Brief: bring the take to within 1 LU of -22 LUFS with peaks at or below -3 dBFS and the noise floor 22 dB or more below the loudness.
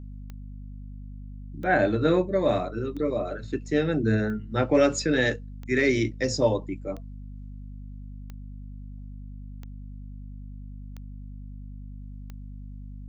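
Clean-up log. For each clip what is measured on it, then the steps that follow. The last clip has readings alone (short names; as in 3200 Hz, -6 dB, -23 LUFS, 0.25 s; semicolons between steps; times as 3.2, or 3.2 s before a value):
clicks 10; hum 50 Hz; harmonics up to 250 Hz; hum level -37 dBFS; loudness -25.5 LUFS; peak -9.0 dBFS; loudness target -22.0 LUFS
-> de-click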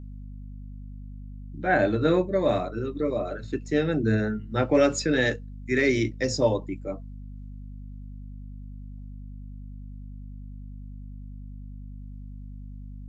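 clicks 0; hum 50 Hz; harmonics up to 250 Hz; hum level -37 dBFS
-> notches 50/100/150/200/250 Hz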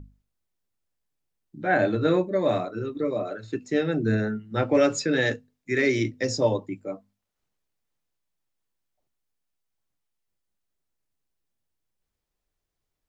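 hum none; loudness -25.5 LUFS; peak -9.5 dBFS; loudness target -22.0 LUFS
-> gain +3.5 dB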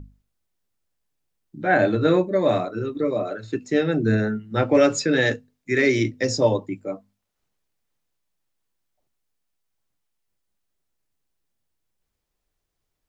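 loudness -22.0 LUFS; peak -6.0 dBFS; noise floor -79 dBFS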